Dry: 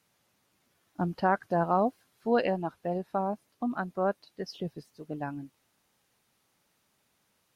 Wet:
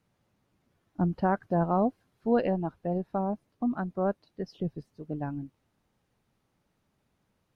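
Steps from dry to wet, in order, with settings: tilt EQ -3 dB/octave; trim -3 dB

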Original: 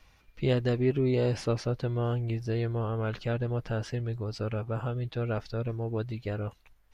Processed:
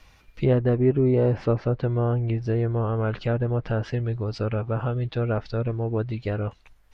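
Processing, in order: low-pass that closes with the level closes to 1.4 kHz, closed at -25 dBFS; trim +6 dB

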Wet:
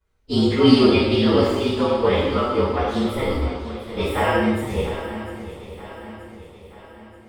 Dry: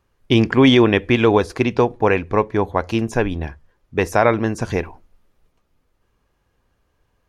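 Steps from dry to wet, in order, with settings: frequency axis rescaled in octaves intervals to 113%; flange 1.9 Hz, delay 1.9 ms, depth 1.5 ms, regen -48%; shuffle delay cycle 929 ms, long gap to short 3:1, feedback 47%, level -13 dB; gated-style reverb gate 350 ms falling, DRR -7.5 dB; trim -4.5 dB

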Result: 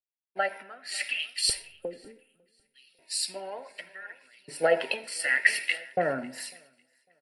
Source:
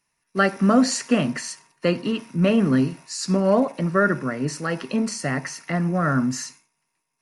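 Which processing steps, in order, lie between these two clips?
0.63–1.28 s: treble shelf 5.5 kHz -5.5 dB; 1.71–2.74 s: spectral selection erased 540–6800 Hz; dynamic bell 9.7 kHz, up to +5 dB, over -48 dBFS, Q 1.4; in parallel at -1 dB: peak limiter -16 dBFS, peak gain reduction 9.5 dB; on the sum: compression 12:1, threshold -23 dBFS, peak gain reduction 14.5 dB; LFO high-pass saw up 0.67 Hz 440–4100 Hz; static phaser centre 2.8 kHz, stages 4; phaser 0.47 Hz, delay 3.6 ms, feedback 38%; feedback delay 550 ms, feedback 57%, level -17 dB; on a send at -15.5 dB: reverberation RT60 1.4 s, pre-delay 35 ms; on the sum: three bands expanded up and down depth 100%

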